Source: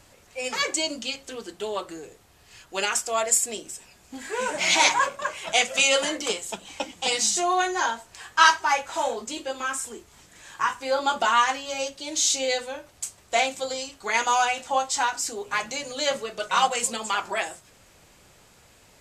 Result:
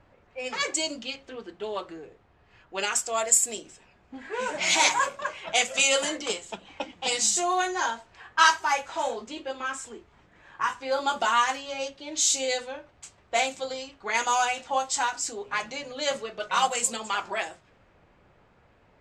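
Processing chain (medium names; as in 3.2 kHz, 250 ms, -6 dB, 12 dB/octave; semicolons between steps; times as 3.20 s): dynamic bell 7.5 kHz, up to +5 dB, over -41 dBFS, Q 4.6; level-controlled noise filter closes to 1.7 kHz, open at -18.5 dBFS; trim -2.5 dB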